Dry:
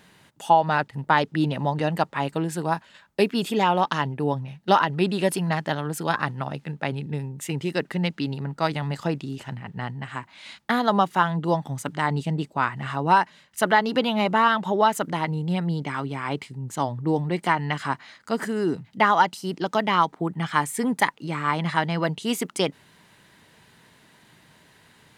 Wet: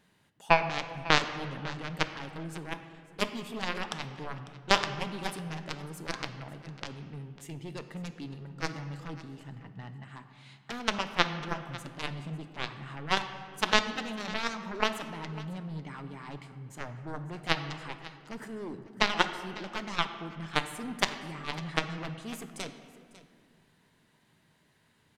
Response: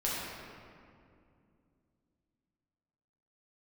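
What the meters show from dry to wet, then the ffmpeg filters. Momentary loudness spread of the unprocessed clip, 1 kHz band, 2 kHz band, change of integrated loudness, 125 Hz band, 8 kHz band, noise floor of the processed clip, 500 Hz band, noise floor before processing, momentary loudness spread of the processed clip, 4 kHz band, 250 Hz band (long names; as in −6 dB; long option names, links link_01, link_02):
11 LU, −12.0 dB, −5.5 dB, −9.0 dB, −11.5 dB, −6.0 dB, −67 dBFS, −11.5 dB, −57 dBFS, 17 LU, −1.5 dB, −12.5 dB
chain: -filter_complex "[0:a]lowshelf=frequency=320:gain=3.5,aeval=exprs='0.631*(cos(1*acos(clip(val(0)/0.631,-1,1)))-cos(1*PI/2))+0.251*(cos(3*acos(clip(val(0)/0.631,-1,1)))-cos(3*PI/2))':channel_layout=same,aecho=1:1:549:0.126,asplit=2[link_01][link_02];[1:a]atrim=start_sample=2205,asetrate=52920,aresample=44100[link_03];[link_02][link_03]afir=irnorm=-1:irlink=0,volume=-12.5dB[link_04];[link_01][link_04]amix=inputs=2:normalize=0,volume=-1dB"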